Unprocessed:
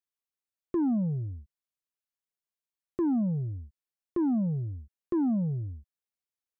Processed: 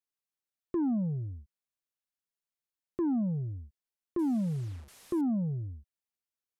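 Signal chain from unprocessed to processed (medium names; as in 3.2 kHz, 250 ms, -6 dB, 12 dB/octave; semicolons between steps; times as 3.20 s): 4.19–5.21 s: one-bit delta coder 64 kbps, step -46 dBFS; trim -2.5 dB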